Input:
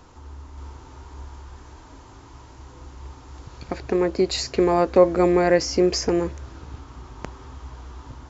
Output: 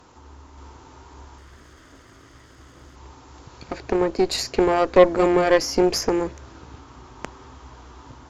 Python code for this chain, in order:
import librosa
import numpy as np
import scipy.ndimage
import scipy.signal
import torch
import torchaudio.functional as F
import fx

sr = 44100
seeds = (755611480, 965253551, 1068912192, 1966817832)

y = fx.lower_of_two(x, sr, delay_ms=0.62, at=(1.38, 2.96))
y = fx.low_shelf(y, sr, hz=85.0, db=-12.0)
y = fx.cheby_harmonics(y, sr, harmonics=(6, 7), levels_db=(-18, -35), full_scale_db=-3.0)
y = y * 10.0 ** (1.5 / 20.0)